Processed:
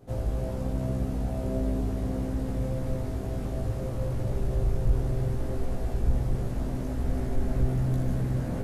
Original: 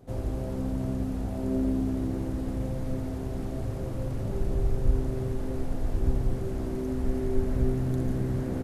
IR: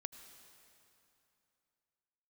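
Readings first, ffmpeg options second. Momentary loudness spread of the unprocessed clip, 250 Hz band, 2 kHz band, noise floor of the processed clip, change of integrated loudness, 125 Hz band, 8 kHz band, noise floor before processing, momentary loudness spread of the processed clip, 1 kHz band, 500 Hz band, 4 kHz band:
6 LU, -2.5 dB, +1.5 dB, -32 dBFS, +0.5 dB, +2.0 dB, no reading, -33 dBFS, 4 LU, +1.5 dB, -1.0 dB, +1.5 dB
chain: -filter_complex "[0:a]asplit=2[s0][s1];[1:a]atrim=start_sample=2205,asetrate=29547,aresample=44100,adelay=17[s2];[s1][s2]afir=irnorm=-1:irlink=0,volume=1.06[s3];[s0][s3]amix=inputs=2:normalize=0,asoftclip=type=tanh:threshold=0.299,volume=0.891"

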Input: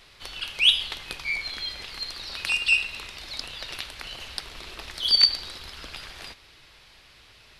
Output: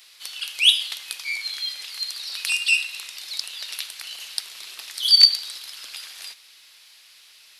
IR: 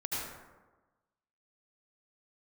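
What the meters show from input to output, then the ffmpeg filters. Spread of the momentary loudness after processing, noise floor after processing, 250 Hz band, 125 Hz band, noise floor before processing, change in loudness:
21 LU, -52 dBFS, under -15 dB, under -25 dB, -54 dBFS, +3.5 dB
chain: -af "crystalizer=i=4:c=0,highpass=f=1300:p=1,volume=0.631"

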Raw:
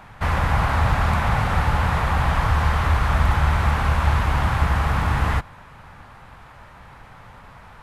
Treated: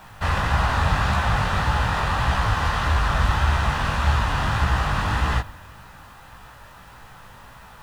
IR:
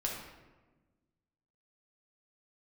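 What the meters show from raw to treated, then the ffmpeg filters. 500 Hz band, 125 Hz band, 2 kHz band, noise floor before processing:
-1.5 dB, -2.5 dB, +0.5 dB, -45 dBFS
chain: -filter_complex "[0:a]highshelf=f=2400:g=10.5,adynamicsmooth=sensitivity=1.5:basefreq=6700,asplit=2[s0][s1];[1:a]atrim=start_sample=2205[s2];[s1][s2]afir=irnorm=-1:irlink=0,volume=0.119[s3];[s0][s3]amix=inputs=2:normalize=0,flanger=delay=15.5:depth=6.8:speed=1.7,bandreject=f=2200:w=7.5,acrusher=bits=8:mix=0:aa=0.000001"

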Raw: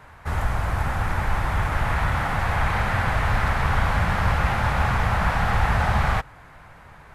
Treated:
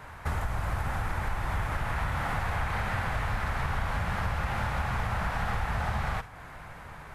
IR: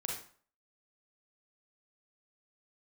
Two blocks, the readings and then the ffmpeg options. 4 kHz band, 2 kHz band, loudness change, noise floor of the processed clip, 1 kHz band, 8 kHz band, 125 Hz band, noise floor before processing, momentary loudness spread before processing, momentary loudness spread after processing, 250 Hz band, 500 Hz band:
-8.0 dB, -8.0 dB, -8.0 dB, -46 dBFS, -8.0 dB, -6.0 dB, -8.5 dB, -47 dBFS, 4 LU, 5 LU, -8.0 dB, -8.0 dB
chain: -filter_complex "[0:a]acompressor=threshold=0.0355:ratio=6,asplit=2[s0][s1];[1:a]atrim=start_sample=2205,highshelf=f=5300:g=10[s2];[s1][s2]afir=irnorm=-1:irlink=0,volume=0.266[s3];[s0][s3]amix=inputs=2:normalize=0"

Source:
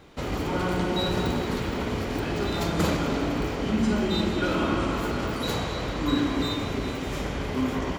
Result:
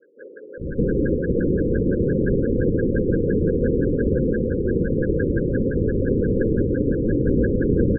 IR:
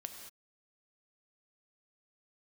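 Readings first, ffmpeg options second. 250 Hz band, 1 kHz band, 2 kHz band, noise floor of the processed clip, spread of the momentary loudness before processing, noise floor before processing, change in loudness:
+5.5 dB, under -25 dB, -2.0 dB, -40 dBFS, 5 LU, -31 dBFS, +5.5 dB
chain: -filter_complex "[0:a]lowshelf=f=310:g=10.5,dynaudnorm=f=150:g=3:m=2.82,asplit=2[s0][s1];[s1]alimiter=limit=0.251:level=0:latency=1:release=163,volume=1.12[s2];[s0][s2]amix=inputs=2:normalize=0,acontrast=58,aresample=11025,asoftclip=type=tanh:threshold=0.2,aresample=44100,acrossover=split=750|2500[s3][s4][s5];[s5]adelay=200[s6];[s3]adelay=610[s7];[s7][s4][s6]amix=inputs=3:normalize=0,aeval=exprs='(mod(5.31*val(0)+1,2)-1)/5.31':c=same,asuperstop=centerf=930:order=20:qfactor=0.84,afftfilt=real='re*lt(b*sr/1024,490*pow(1700/490,0.5+0.5*sin(2*PI*5.8*pts/sr)))':imag='im*lt(b*sr/1024,490*pow(1700/490,0.5+0.5*sin(2*PI*5.8*pts/sr)))':win_size=1024:overlap=0.75,volume=1.68"

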